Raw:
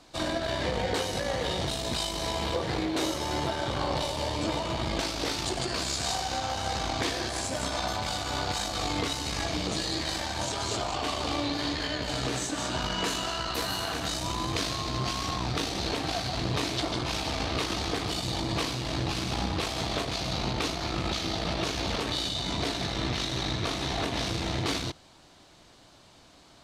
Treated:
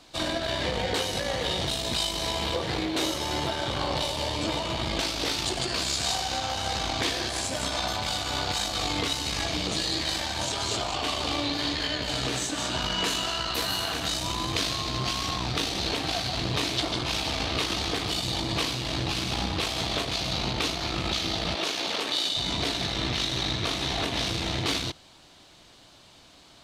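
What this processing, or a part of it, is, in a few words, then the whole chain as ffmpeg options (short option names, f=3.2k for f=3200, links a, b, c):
presence and air boost: -filter_complex "[0:a]asettb=1/sr,asplit=3[a][b][c];[a]atrim=end=21.554[d];[b]atrim=start=21.55:end=22.37,asetpts=PTS-STARTPTS,afade=t=in:d=0.004:c=qsin,afade=t=out:st=0.816:d=0.004:c=qsin,highpass=300[e];[c]atrim=start=22.366[f];[d][e]acrossfade=d=0.004:c1=hsin:c2=qsin[g];[g][f]acrossfade=d=0.004:c1=qsin:c2=hsin,equalizer=f=3.2k:t=o:w=1.2:g=5,highshelf=f=11k:g=6.5"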